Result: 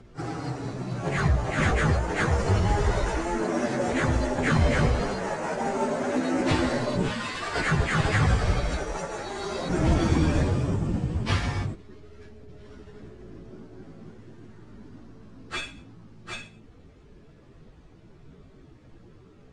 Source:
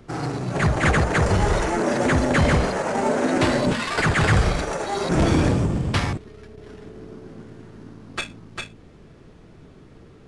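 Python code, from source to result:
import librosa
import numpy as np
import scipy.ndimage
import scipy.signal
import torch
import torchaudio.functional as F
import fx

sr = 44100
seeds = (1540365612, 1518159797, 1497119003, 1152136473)

y = scipy.signal.sosfilt(scipy.signal.butter(4, 9400.0, 'lowpass', fs=sr, output='sos'), x)
y = fx.low_shelf(y, sr, hz=72.0, db=5.5)
y = fx.stretch_vocoder_free(y, sr, factor=1.9)
y = F.gain(torch.from_numpy(y), -3.0).numpy()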